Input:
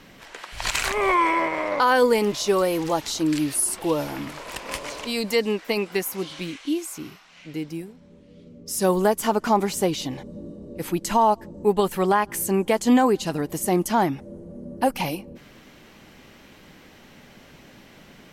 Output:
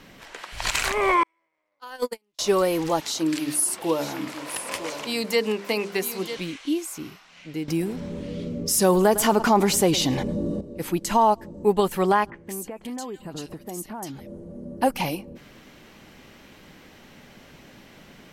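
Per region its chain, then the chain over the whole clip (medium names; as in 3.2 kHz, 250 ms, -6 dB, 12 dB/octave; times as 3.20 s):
1.23–2.39 s: gate -15 dBFS, range -53 dB + treble shelf 2 kHz +9.5 dB
3.00–6.37 s: Bessel high-pass 150 Hz + hum notches 50/100/150/200/250/300/350/400/450 Hz + delay 951 ms -11.5 dB
7.68–10.61 s: delay 107 ms -22 dB + level flattener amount 50%
12.30–14.27 s: compression, threshold -32 dBFS + bands offset in time lows, highs 170 ms, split 2.1 kHz
whole clip: none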